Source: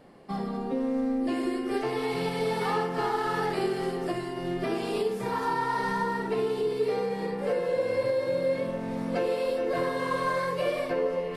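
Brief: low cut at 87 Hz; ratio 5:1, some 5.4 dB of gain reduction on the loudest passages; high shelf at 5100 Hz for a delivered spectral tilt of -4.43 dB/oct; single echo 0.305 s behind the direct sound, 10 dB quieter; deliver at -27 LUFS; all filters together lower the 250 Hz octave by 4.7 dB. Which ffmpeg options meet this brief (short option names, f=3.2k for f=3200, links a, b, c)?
-af "highpass=87,equalizer=f=250:t=o:g=-6,highshelf=f=5.1k:g=8.5,acompressor=threshold=-30dB:ratio=5,aecho=1:1:305:0.316,volume=6.5dB"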